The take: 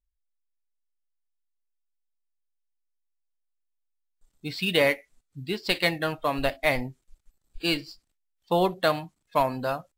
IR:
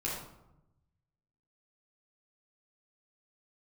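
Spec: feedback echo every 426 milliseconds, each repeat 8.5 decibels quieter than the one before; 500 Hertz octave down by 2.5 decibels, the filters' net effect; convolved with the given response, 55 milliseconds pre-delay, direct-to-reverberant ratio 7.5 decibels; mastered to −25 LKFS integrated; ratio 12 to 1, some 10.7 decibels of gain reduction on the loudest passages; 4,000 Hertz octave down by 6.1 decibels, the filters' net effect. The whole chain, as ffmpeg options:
-filter_complex "[0:a]equalizer=frequency=500:width_type=o:gain=-3,equalizer=frequency=4000:width_type=o:gain=-8.5,acompressor=threshold=-30dB:ratio=12,aecho=1:1:426|852|1278|1704:0.376|0.143|0.0543|0.0206,asplit=2[link_01][link_02];[1:a]atrim=start_sample=2205,adelay=55[link_03];[link_02][link_03]afir=irnorm=-1:irlink=0,volume=-11.5dB[link_04];[link_01][link_04]amix=inputs=2:normalize=0,volume=11dB"

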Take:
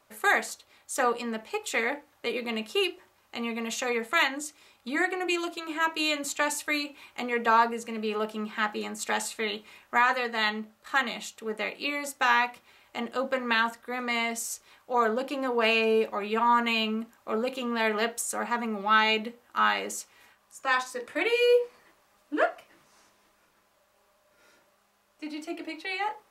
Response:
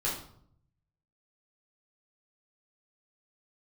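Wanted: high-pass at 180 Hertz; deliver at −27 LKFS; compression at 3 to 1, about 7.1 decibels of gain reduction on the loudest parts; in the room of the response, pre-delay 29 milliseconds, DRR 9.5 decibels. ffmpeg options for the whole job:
-filter_complex "[0:a]highpass=180,acompressor=threshold=-27dB:ratio=3,asplit=2[link_01][link_02];[1:a]atrim=start_sample=2205,adelay=29[link_03];[link_02][link_03]afir=irnorm=-1:irlink=0,volume=-16dB[link_04];[link_01][link_04]amix=inputs=2:normalize=0,volume=4.5dB"

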